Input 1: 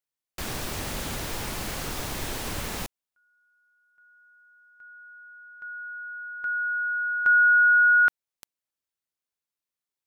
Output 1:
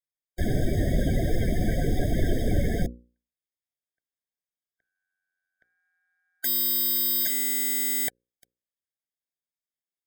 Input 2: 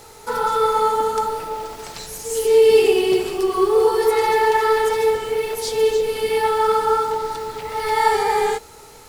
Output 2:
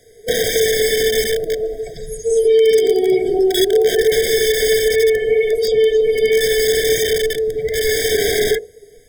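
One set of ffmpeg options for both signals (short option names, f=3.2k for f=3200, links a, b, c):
-filter_complex "[0:a]afftdn=nr=19:nf=-30,asplit=2[a][b];[b]acompressor=threshold=-25dB:ratio=8:attack=0.45:release=126:knee=6:detection=peak,volume=-1.5dB[c];[a][c]amix=inputs=2:normalize=0,bandreject=f=60:t=h:w=6,bandreject=f=120:t=h:w=6,bandreject=f=180:t=h:w=6,bandreject=f=240:t=h:w=6,bandreject=f=300:t=h:w=6,bandreject=f=360:t=h:w=6,bandreject=f=420:t=h:w=6,bandreject=f=480:t=h:w=6,bandreject=f=540:t=h:w=6,acrossover=split=850|1800|5500[d][e][f][g];[d]acompressor=threshold=-21dB:ratio=6[h];[e]acompressor=threshold=-20dB:ratio=8[i];[f]acompressor=threshold=-32dB:ratio=6[j];[g]acompressor=threshold=-49dB:ratio=2[k];[h][i][j][k]amix=inputs=4:normalize=0,acrossover=split=690[l][m];[m]aeval=exprs='(mod(12.6*val(0)+1,2)-1)/12.6':c=same[n];[l][n]amix=inputs=2:normalize=0,afftfilt=real='re*eq(mod(floor(b*sr/1024/770),2),0)':imag='im*eq(mod(floor(b*sr/1024/770),2),0)':win_size=1024:overlap=0.75,volume=8.5dB"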